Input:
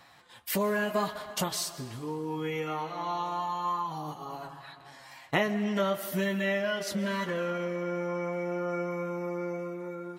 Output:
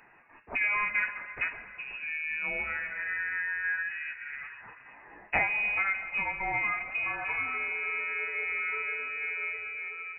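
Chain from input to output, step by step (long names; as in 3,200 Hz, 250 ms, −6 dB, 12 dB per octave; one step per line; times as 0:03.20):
hum removal 65.23 Hz, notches 27
voice inversion scrambler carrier 2,700 Hz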